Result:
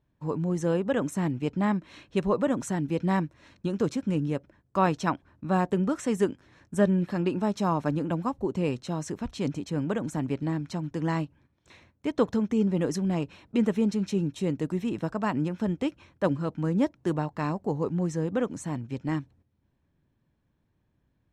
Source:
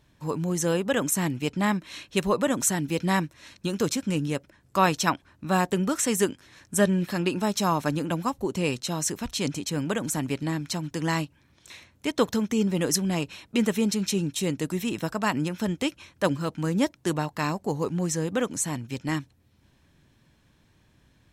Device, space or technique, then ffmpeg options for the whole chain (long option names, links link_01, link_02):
through cloth: -af "agate=range=-10dB:threshold=-55dB:ratio=16:detection=peak,lowpass=9300,highshelf=frequency=2000:gain=-15"